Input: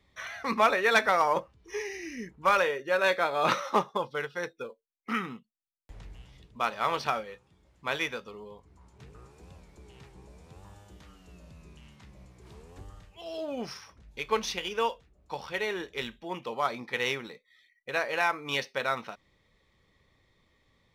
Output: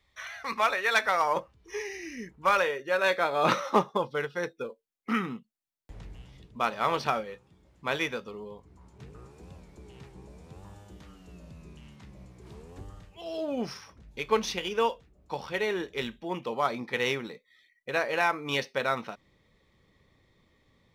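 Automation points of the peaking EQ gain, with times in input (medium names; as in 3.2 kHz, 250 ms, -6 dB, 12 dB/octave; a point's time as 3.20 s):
peaking EQ 220 Hz 2.8 oct
0.92 s -10.5 dB
1.40 s -1 dB
3.04 s -1 dB
3.47 s +5 dB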